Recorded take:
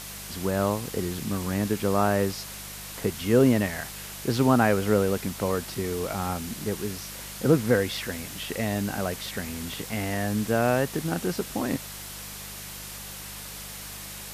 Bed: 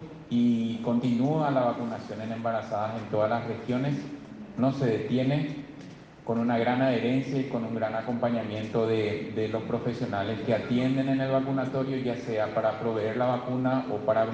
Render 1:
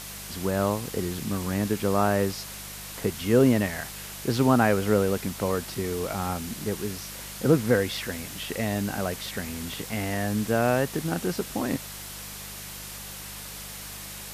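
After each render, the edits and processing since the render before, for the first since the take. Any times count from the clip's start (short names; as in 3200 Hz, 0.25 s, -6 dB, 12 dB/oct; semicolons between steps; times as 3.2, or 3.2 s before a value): nothing audible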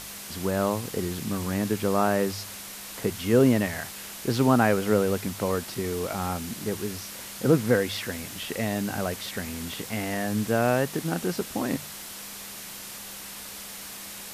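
de-hum 50 Hz, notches 3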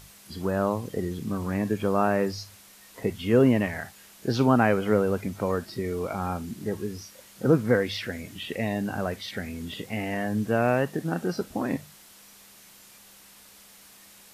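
noise print and reduce 12 dB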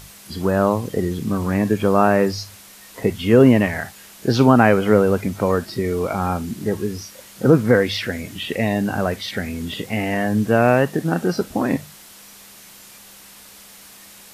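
gain +8 dB; limiter -2 dBFS, peak gain reduction 1.5 dB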